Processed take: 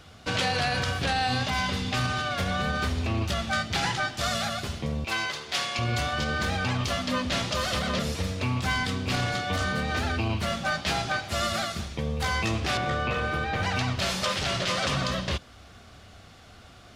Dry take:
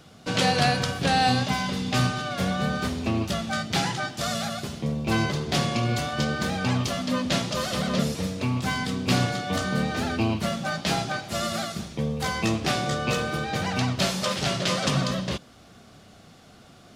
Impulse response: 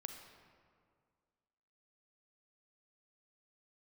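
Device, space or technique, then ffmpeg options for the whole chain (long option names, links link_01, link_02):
car stereo with a boomy subwoofer: -filter_complex "[0:a]asettb=1/sr,asplit=3[link_01][link_02][link_03];[link_01]atrim=end=5.044[link_04];[link_02]atrim=start=5.04:end=5.79,asetpts=PTS-STARTPTS,afade=type=in:duration=0.004:curve=qsin,afade=type=out:start_time=0.746:duration=0.004:curve=qsin,highpass=frequency=1200:poles=1[link_05];[link_03]atrim=start=5.786[link_06];[link_04][link_05]acrossfade=duration=0.004:curve1=hsin:curve2=qsin[link_07];[link_07][link_06]acrossfade=duration=0.004:curve1=qsin:curve2=hsin,asettb=1/sr,asplit=3[link_08][link_09][link_10];[link_08]atrim=end=12.774[link_11];[link_09]atrim=start=12.77:end=13.63,asetpts=PTS-STARTPTS,afade=type=in:duration=0.004:curve=qsin,afade=type=out:start_time=0.856:duration=0.004:curve=qsin,acrossover=split=3000[link_12][link_13];[link_13]acompressor=threshold=-48dB:ratio=4:attack=1:release=60[link_14];[link_12][link_14]amix=inputs=2:normalize=0[link_15];[link_10]atrim=start=13.626[link_16];[link_11][link_15]acrossfade=duration=0.004:curve1=hsin:curve2=qsin[link_17];[link_17][link_16]acrossfade=duration=0.004:curve1=qsin:curve2=hsin,lowshelf=frequency=110:width_type=q:width=1.5:gain=9,alimiter=limit=-17.5dB:level=0:latency=1:release=47,equalizer=frequency=2000:width_type=o:width=2.8:gain=6,volume=-2.5dB"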